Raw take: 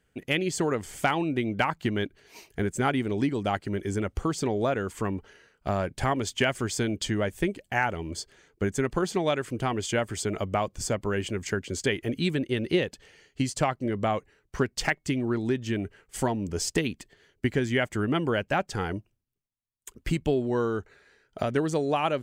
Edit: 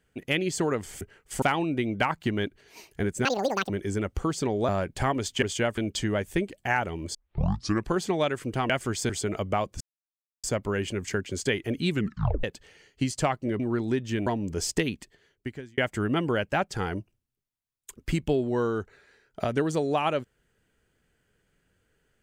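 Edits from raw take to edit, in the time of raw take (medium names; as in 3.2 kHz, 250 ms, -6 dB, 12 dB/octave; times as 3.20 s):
2.84–3.70 s: speed 193%
4.69–5.70 s: delete
6.44–6.84 s: swap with 9.76–10.11 s
8.21 s: tape start 0.74 s
10.82 s: insert silence 0.63 s
12.30 s: tape stop 0.52 s
13.98–15.17 s: delete
15.84–16.25 s: move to 1.01 s
16.92–17.76 s: fade out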